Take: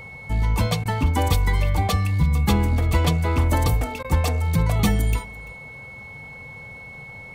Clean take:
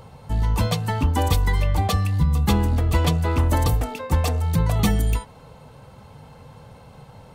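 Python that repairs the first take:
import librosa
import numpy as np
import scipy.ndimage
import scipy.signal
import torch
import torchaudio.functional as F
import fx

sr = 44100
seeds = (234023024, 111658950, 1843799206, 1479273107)

y = fx.notch(x, sr, hz=2200.0, q=30.0)
y = fx.fix_interpolate(y, sr, at_s=(0.84, 4.03), length_ms=13.0)
y = fx.fix_echo_inverse(y, sr, delay_ms=339, level_db=-21.5)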